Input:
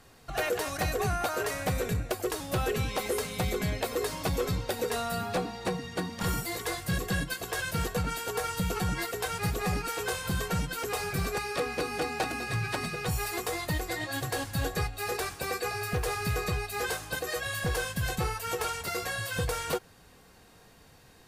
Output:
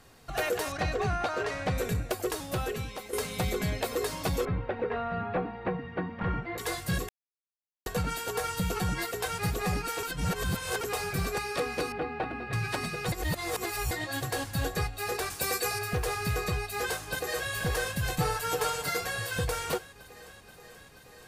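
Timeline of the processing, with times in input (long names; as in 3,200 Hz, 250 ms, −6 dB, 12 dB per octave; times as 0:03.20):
0:00.72–0:01.78: low-pass filter 4,600 Hz
0:02.33–0:03.13: fade out, to −12.5 dB
0:04.45–0:06.58: low-pass filter 2,300 Hz 24 dB per octave
0:07.09–0:07.86: silence
0:10.03–0:10.81: reverse
0:11.92–0:12.53: high-frequency loss of the air 460 metres
0:13.12–0:13.91: reverse
0:15.30–0:15.79: high-shelf EQ 4,600 Hz +10.5 dB
0:16.59–0:17.52: delay throw 480 ms, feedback 80%, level −9.5 dB
0:18.18–0:19.01: comb filter 6.7 ms, depth 79%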